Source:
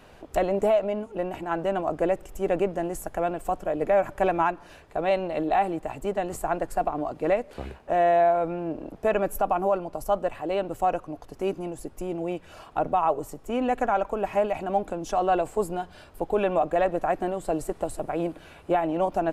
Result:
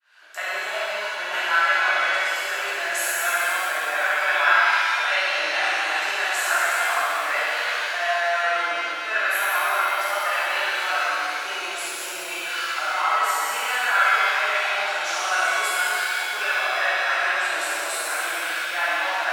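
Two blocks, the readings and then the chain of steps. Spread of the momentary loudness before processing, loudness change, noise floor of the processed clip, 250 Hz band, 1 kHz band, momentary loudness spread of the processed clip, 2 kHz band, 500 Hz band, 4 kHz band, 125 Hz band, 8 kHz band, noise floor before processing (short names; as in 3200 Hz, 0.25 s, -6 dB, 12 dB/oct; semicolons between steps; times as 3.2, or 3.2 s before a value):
9 LU, +5.0 dB, -30 dBFS, -17.5 dB, +3.0 dB, 7 LU, +19.0 dB, -6.5 dB, +20.5 dB, under -25 dB, +15.5 dB, -50 dBFS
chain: opening faded in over 0.91 s; bell 4400 Hz +8 dB 1.4 oct; reverse; compressor, threshold -30 dBFS, peak gain reduction 12.5 dB; reverse; resonant high-pass 1500 Hz, resonance Q 4.5; on a send: flutter echo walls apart 11.2 m, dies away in 0.63 s; on the sum: shimmer reverb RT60 2.7 s, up +7 st, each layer -8 dB, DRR -9.5 dB; gain +4.5 dB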